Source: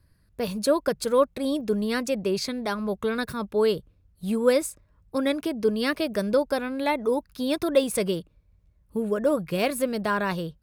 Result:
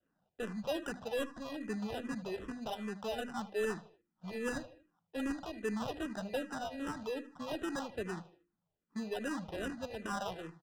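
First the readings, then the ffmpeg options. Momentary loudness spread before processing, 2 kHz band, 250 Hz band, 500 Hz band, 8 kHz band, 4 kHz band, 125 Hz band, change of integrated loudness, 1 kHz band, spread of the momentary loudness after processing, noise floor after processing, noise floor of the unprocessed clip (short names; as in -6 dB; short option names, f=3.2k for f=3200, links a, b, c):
7 LU, -10.5 dB, -12.5 dB, -15.5 dB, -15.0 dB, -13.0 dB, -12.0 dB, -14.0 dB, -11.5 dB, 6 LU, -85 dBFS, -63 dBFS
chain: -filter_complex "[0:a]bandreject=f=50:t=h:w=6,bandreject=f=100:t=h:w=6,bandreject=f=150:t=h:w=6,bandreject=f=200:t=h:w=6,bandreject=f=250:t=h:w=6,bandreject=f=300:t=h:w=6,bandreject=f=350:t=h:w=6,aecho=1:1:1.3:0.31,adynamicequalizer=threshold=0.0224:dfrequency=460:dqfactor=0.83:tfrequency=460:tqfactor=0.83:attack=5:release=100:ratio=0.375:range=1.5:mode=cutabove:tftype=bell,acrossover=split=390|1100|3600[a][b][c][d];[c]alimiter=level_in=3.5dB:limit=-24dB:level=0:latency=1,volume=-3.5dB[e];[d]acompressor=threshold=-53dB:ratio=6[f];[a][b][e][f]amix=inputs=4:normalize=0,highpass=f=200:w=0.5412,highpass=f=200:w=1.3066,equalizer=f=580:t=q:w=4:g=-7,equalizer=f=860:t=q:w=4:g=-9,equalizer=f=1.4k:t=q:w=4:g=6,equalizer=f=3k:t=q:w=4:g=9,equalizer=f=5k:t=q:w=4:g=-4,lowpass=f=5.6k:w=0.5412,lowpass=f=5.6k:w=1.3066,acrusher=samples=20:mix=1:aa=0.000001,asoftclip=type=tanh:threshold=-21.5dB,aeval=exprs='0.0841*(cos(1*acos(clip(val(0)/0.0841,-1,1)))-cos(1*PI/2))+0.00596*(cos(2*acos(clip(val(0)/0.0841,-1,1)))-cos(2*PI/2))':c=same,aecho=1:1:77|154|231:0.178|0.0676|0.0257,adynamicsmooth=sensitivity=4:basefreq=3.9k,asplit=2[g][h];[h]afreqshift=-2.5[i];[g][i]amix=inputs=2:normalize=1,volume=-4.5dB"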